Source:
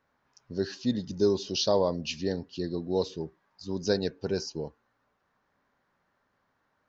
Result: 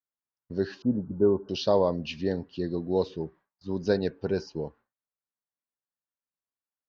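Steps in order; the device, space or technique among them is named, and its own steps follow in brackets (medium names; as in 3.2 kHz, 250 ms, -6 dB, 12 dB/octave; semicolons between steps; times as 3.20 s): hearing-loss simulation (low-pass 2.9 kHz 12 dB/octave; expander -49 dBFS); 0.82–1.49 s: steep low-pass 1.5 kHz 96 dB/octave; trim +2 dB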